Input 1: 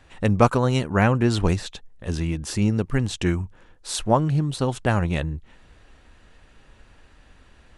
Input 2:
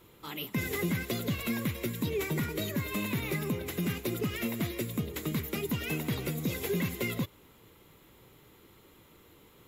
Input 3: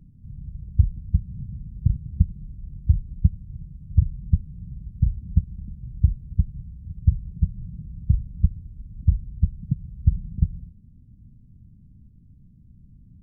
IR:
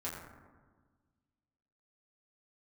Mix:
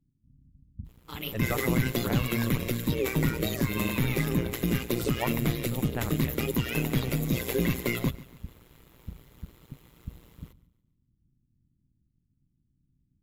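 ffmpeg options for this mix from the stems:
-filter_complex "[0:a]adelay=1100,volume=0.282[s0];[1:a]dynaudnorm=f=210:g=3:m=1.78,aeval=exprs='sgn(val(0))*max(abs(val(0))-0.00119,0)':c=same,adelay=850,volume=1.26,asplit=2[s1][s2];[s2]volume=0.106[s3];[2:a]volume=0.106[s4];[s3]aecho=0:1:142|284|426|568|710|852:1|0.42|0.176|0.0741|0.0311|0.0131[s5];[s0][s1][s4][s5]amix=inputs=4:normalize=0,equalizer=f=140:w=4:g=5.5,tremolo=f=120:d=0.824"

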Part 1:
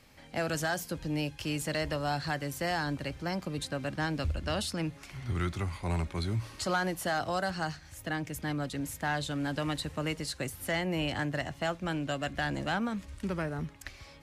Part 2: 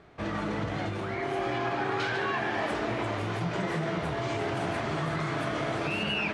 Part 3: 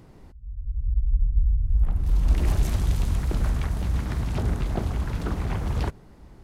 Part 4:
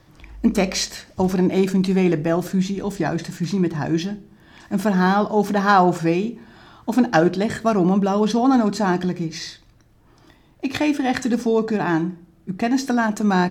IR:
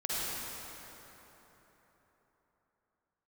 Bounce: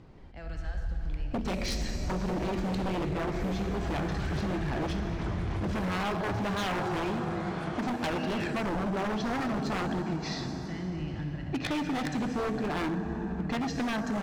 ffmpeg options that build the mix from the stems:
-filter_complex "[0:a]lowpass=3900,asubboost=boost=7.5:cutoff=220,volume=0.133,asplit=2[s0][s1];[s1]volume=0.562[s2];[1:a]adelay=2200,volume=0.398[s3];[2:a]acompressor=threshold=0.0708:ratio=6,volume=0.708[s4];[3:a]adelay=900,volume=0.596,asplit=2[s5][s6];[s6]volume=0.168[s7];[s4][s5]amix=inputs=2:normalize=0,lowpass=4900,alimiter=limit=0.178:level=0:latency=1:release=311,volume=1[s8];[4:a]atrim=start_sample=2205[s9];[s2][s7]amix=inputs=2:normalize=0[s10];[s10][s9]afir=irnorm=-1:irlink=0[s11];[s0][s3][s8][s11]amix=inputs=4:normalize=0,aeval=exprs='0.0891*(abs(mod(val(0)/0.0891+3,4)-2)-1)':c=same,acompressor=threshold=0.0398:ratio=6"

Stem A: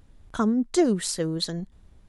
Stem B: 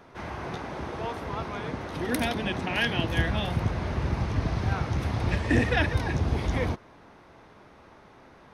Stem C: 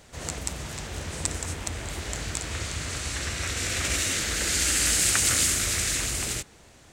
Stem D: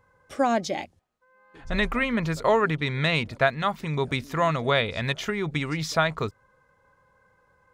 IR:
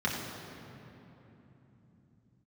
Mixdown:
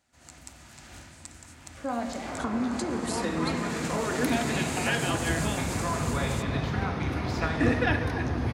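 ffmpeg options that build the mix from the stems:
-filter_complex "[0:a]acompressor=threshold=0.0708:ratio=6,adelay=2050,volume=1,asplit=2[s0][s1];[s1]volume=0.112[s2];[1:a]flanger=delay=2.1:depth=2.8:regen=-71:speed=0.35:shape=triangular,adelay=2100,volume=1.26,asplit=2[s3][s4];[s4]volume=0.168[s5];[2:a]equalizer=f=460:t=o:w=0.34:g=-14.5,bandreject=f=1100:w=12,dynaudnorm=f=190:g=3:m=3.98,volume=0.112,asplit=2[s6][s7];[s7]volume=0.133[s8];[3:a]equalizer=f=3600:t=o:w=0.77:g=5,adelay=1450,volume=0.251,asplit=2[s9][s10];[s10]volume=0.335[s11];[s0][s6][s9]amix=inputs=3:normalize=0,acompressor=threshold=0.0251:ratio=6,volume=1[s12];[4:a]atrim=start_sample=2205[s13];[s2][s5][s8][s11]amix=inputs=4:normalize=0[s14];[s14][s13]afir=irnorm=-1:irlink=0[s15];[s3][s12][s15]amix=inputs=3:normalize=0,highpass=f=99:p=1"

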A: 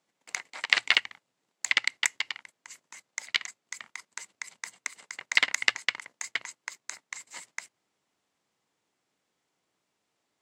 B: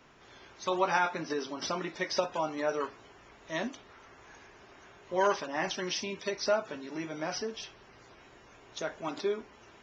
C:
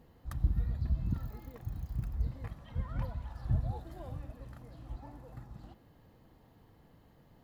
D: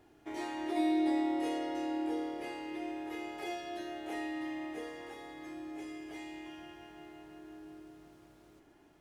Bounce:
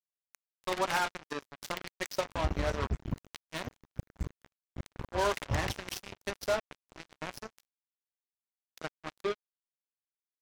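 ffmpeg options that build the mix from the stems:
-filter_complex "[0:a]volume=0.106[s0];[1:a]volume=0.708[s1];[2:a]highpass=f=45:w=0.5412,highpass=f=45:w=1.3066,flanger=delay=6.9:depth=5.3:regen=90:speed=0.84:shape=sinusoidal,adelay=2000,volume=1.33[s2];[s0][s1][s2]amix=inputs=3:normalize=0,acrusher=bits=4:mix=0:aa=0.5"

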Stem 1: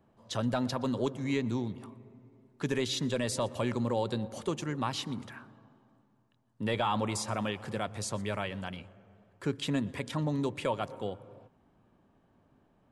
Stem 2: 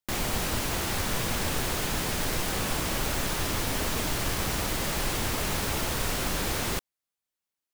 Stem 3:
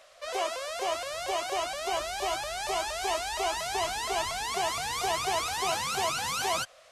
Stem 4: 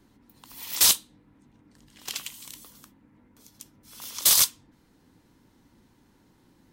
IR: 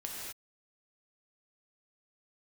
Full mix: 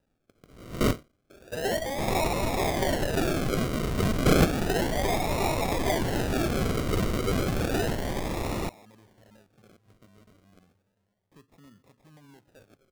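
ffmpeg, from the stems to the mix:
-filter_complex "[0:a]aemphasis=mode=reproduction:type=50kf,alimiter=level_in=1.68:limit=0.0631:level=0:latency=1:release=485,volume=0.596,adelay=1900,volume=0.158[s0];[1:a]adelay=1900,volume=0.891[s1];[2:a]equalizer=f=230:w=0.53:g=11.5,asoftclip=type=tanh:threshold=0.0668,adelay=1300,volume=1.12[s2];[3:a]highpass=1000,alimiter=limit=0.211:level=0:latency=1:release=83,dynaudnorm=f=300:g=7:m=2,volume=0.596[s3];[s0][s1][s2][s3]amix=inputs=4:normalize=0,acrusher=samples=40:mix=1:aa=0.000001:lfo=1:lforange=24:lforate=0.32"

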